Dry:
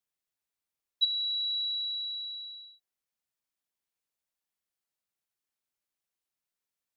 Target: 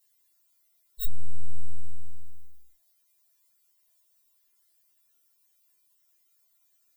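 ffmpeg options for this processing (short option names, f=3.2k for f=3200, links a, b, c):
-af "aemphasis=mode=production:type=50kf,aeval=exprs='0.237*(cos(1*acos(clip(val(0)/0.237,-1,1)))-cos(1*PI/2))+0.0596*(cos(2*acos(clip(val(0)/0.237,-1,1)))-cos(2*PI/2))+0.00211*(cos(4*acos(clip(val(0)/0.237,-1,1)))-cos(4*PI/2))+0.0119*(cos(6*acos(clip(val(0)/0.237,-1,1)))-cos(6*PI/2))+0.0335*(cos(8*acos(clip(val(0)/0.237,-1,1)))-cos(8*PI/2))':c=same,afftfilt=real='re*4*eq(mod(b,16),0)':imag='im*4*eq(mod(b,16),0)':win_size=2048:overlap=0.75,volume=11dB"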